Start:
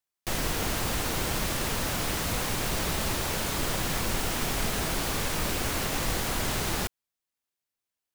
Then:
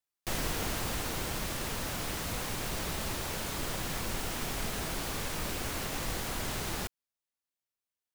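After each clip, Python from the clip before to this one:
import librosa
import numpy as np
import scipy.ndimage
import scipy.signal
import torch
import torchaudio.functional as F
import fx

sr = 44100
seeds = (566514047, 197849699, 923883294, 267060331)

y = fx.rider(x, sr, range_db=10, speed_s=2.0)
y = y * 10.0 ** (-6.0 / 20.0)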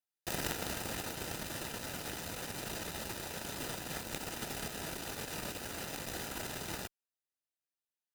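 y = fx.cheby_harmonics(x, sr, harmonics=(3, 5, 6), levels_db=(-8, -21, -29), full_scale_db=-20.5)
y = fx.notch_comb(y, sr, f0_hz=1100.0)
y = y * 10.0 ** (7.0 / 20.0)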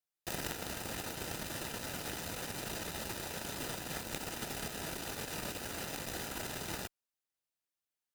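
y = fx.rider(x, sr, range_db=10, speed_s=0.5)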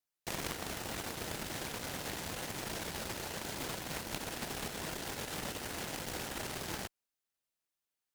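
y = fx.doppler_dist(x, sr, depth_ms=0.66)
y = y * 10.0 ** (1.0 / 20.0)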